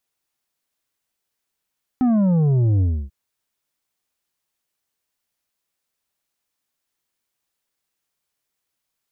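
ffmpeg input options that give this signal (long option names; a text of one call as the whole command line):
ffmpeg -f lavfi -i "aevalsrc='0.178*clip((1.09-t)/0.29,0,1)*tanh(2.24*sin(2*PI*260*1.09/log(65/260)*(exp(log(65/260)*t/1.09)-1)))/tanh(2.24)':duration=1.09:sample_rate=44100" out.wav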